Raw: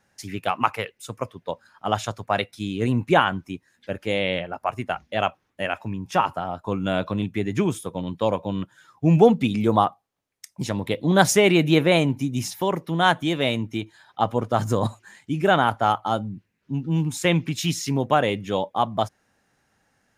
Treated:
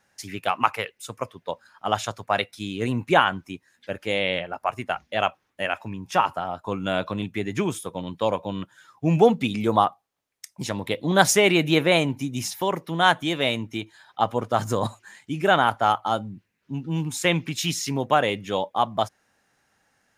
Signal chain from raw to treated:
low-shelf EQ 430 Hz −6.5 dB
level +1.5 dB

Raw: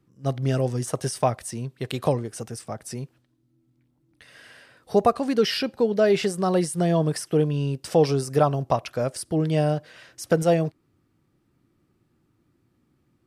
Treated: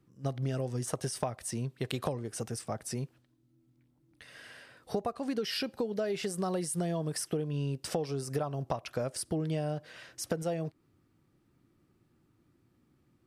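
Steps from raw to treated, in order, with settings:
0:05.44–0:07.27: high-shelf EQ 6,600 Hz +6 dB
downward compressor 16 to 1, threshold −27 dBFS, peak gain reduction 15 dB
level −2 dB

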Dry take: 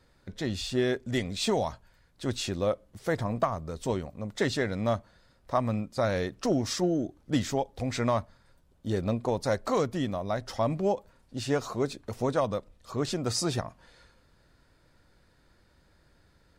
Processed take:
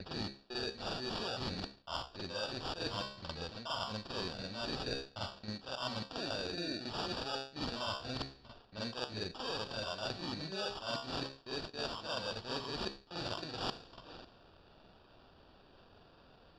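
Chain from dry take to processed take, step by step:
slices reordered back to front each 274 ms, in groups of 2
tilt shelving filter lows −6 dB, about 650 Hz
hum removal 67.58 Hz, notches 39
reversed playback
downward compressor 8 to 1, threshold −41 dBFS, peak gain reduction 20.5 dB
reversed playback
decimation without filtering 21×
low-pass with resonance 4,400 Hz, resonance Q 11
on a send: backwards echo 47 ms −5 dB
on the sum: low-pass that shuts in the quiet parts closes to 2,600 Hz, open at −37.5 dBFS
level +1.5 dB

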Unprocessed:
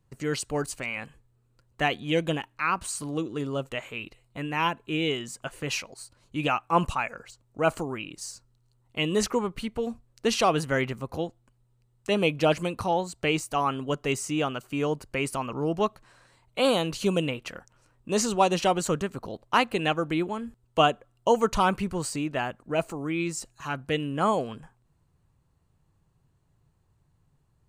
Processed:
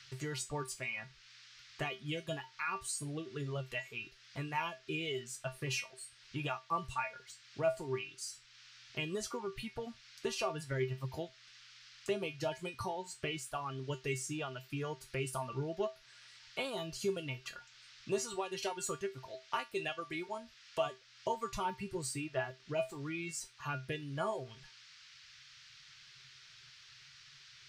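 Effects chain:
reverb reduction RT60 1.5 s
0:18.18–0:20.86: low-shelf EQ 370 Hz −9 dB
downward compressor 6 to 1, threshold −28 dBFS, peak gain reduction 12 dB
tuned comb filter 130 Hz, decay 0.21 s, harmonics odd, mix 90%
noise in a band 1,300–5,500 Hz −71 dBFS
one half of a high-frequency compander encoder only
level +6 dB

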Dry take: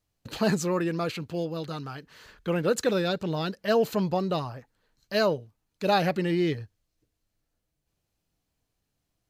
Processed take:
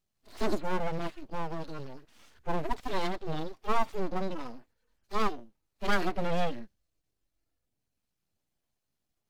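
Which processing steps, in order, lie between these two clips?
harmonic-percussive split with one part muted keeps harmonic
full-wave rectification

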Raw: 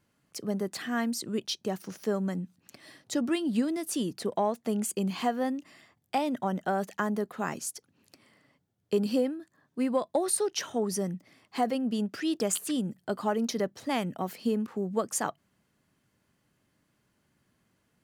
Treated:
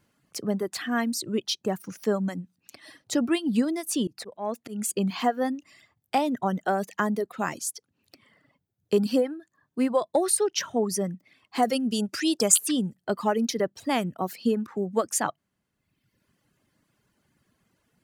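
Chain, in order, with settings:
reverb reduction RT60 1.1 s
0:04.07–0:04.90: volume swells 175 ms
0:11.62–0:12.94: parametric band 8,000 Hz +13.5 dB → +5 dB 2.2 octaves
level +4.5 dB

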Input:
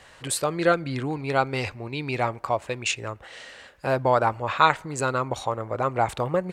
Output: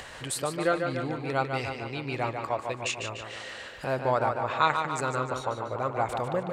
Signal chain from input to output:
upward compression, threshold −27 dBFS
tape delay 147 ms, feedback 64%, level −5 dB, low-pass 5,800 Hz
level −5.5 dB

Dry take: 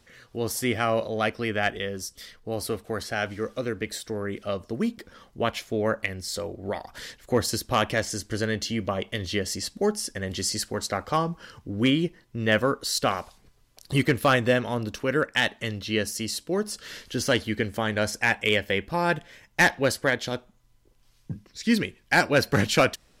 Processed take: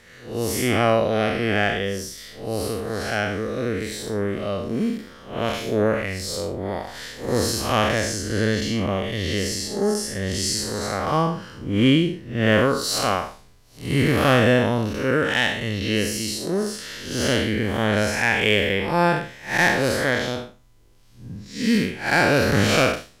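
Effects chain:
spectrum smeared in time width 176 ms
level +8.5 dB

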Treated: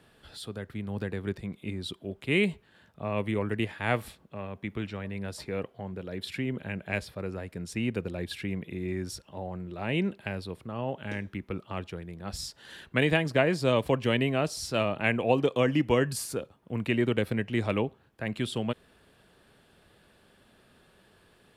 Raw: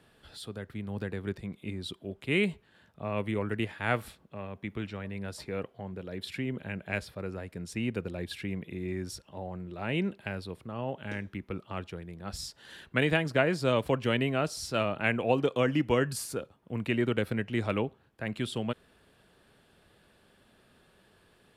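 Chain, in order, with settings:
dynamic equaliser 1,400 Hz, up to −6 dB, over −51 dBFS, Q 6.1
level +2 dB

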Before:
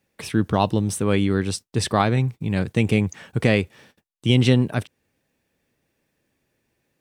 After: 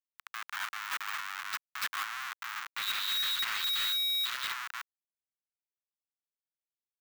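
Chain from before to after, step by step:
stylus tracing distortion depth 0.044 ms
single-tap delay 310 ms −14 dB
0:02.76–0:04.52: steady tone 3,800 Hz −21 dBFS
comparator with hysteresis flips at −24.5 dBFS
Butterworth high-pass 1,200 Hz 36 dB per octave
parametric band 7,100 Hz −9 dB 2.6 octaves
soft clipping −27.5 dBFS, distortion −11 dB
level +2 dB

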